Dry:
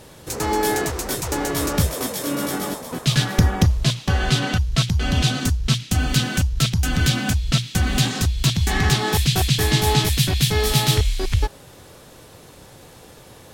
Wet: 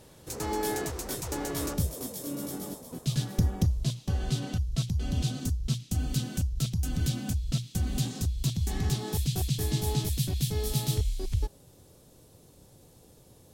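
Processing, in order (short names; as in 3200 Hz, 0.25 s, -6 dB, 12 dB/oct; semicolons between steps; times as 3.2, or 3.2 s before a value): bell 1700 Hz -4 dB 2.5 oct, from 1.74 s -14 dB; gain -8.5 dB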